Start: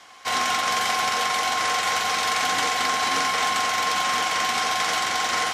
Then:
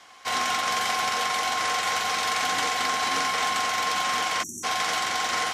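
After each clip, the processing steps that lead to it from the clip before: spectral selection erased 4.43–4.64 s, 400–5600 Hz; trim -2.5 dB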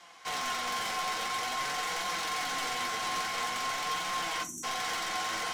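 saturation -26 dBFS, distortion -11 dB; flange 0.48 Hz, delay 5.6 ms, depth 4 ms, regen +54%; reverberation RT60 0.25 s, pre-delay 6 ms, DRR 7.5 dB

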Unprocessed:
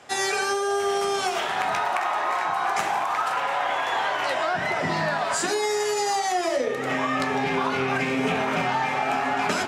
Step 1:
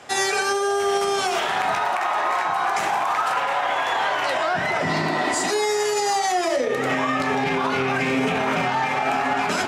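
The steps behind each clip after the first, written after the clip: spectral replace 4.93–5.49 s, 250–2000 Hz before; peak limiter -18.5 dBFS, peak gain reduction 7 dB; trim +5 dB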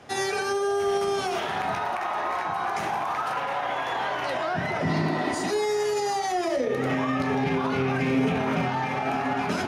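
bass shelf 360 Hz +12 dB; band-stop 7.6 kHz, Q 5.1; trim -7.5 dB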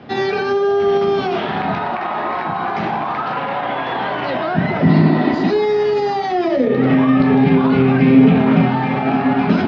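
steep low-pass 4.5 kHz 36 dB/octave; peaking EQ 210 Hz +11.5 dB 1.5 oct; trim +5.5 dB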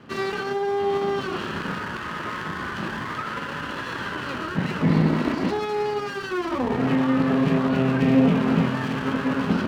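comb filter that takes the minimum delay 0.67 ms; high-pass 82 Hz; trim -6.5 dB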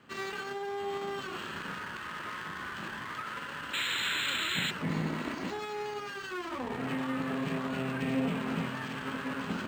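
painted sound noise, 3.73–4.71 s, 1.3–4.2 kHz -26 dBFS; tilt shelf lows -5.5 dB, about 1.2 kHz; decimation joined by straight lines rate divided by 4×; trim -8.5 dB

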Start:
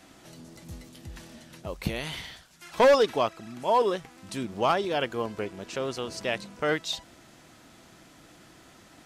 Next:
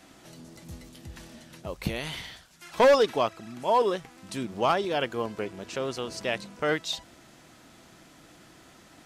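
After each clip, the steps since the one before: hum notches 50/100 Hz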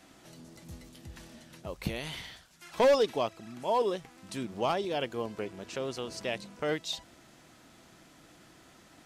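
dynamic bell 1.4 kHz, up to -6 dB, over -40 dBFS, Q 1.4; trim -3.5 dB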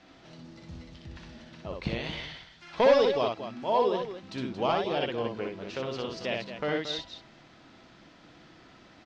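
low-pass 5 kHz 24 dB/octave; on a send: loudspeakers at several distances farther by 21 m -3 dB, 78 m -10 dB; on the sum: trim +1 dB

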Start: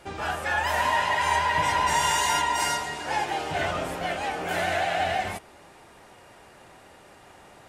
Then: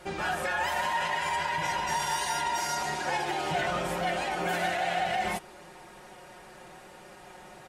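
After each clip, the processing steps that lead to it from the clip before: peak limiter -22.5 dBFS, peak gain reduction 9.5 dB; comb 5.5 ms, depth 71%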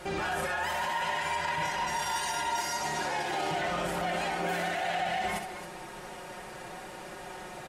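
peak limiter -29.5 dBFS, peak gain reduction 11 dB; loudspeakers at several distances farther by 22 m -7 dB, 93 m -11 dB; trim +5 dB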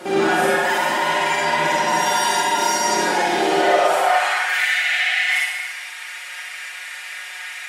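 high-pass sweep 260 Hz -> 2.1 kHz, 3.36–4.54 s; Schroeder reverb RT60 0.84 s, DRR -5 dB; trim +6 dB

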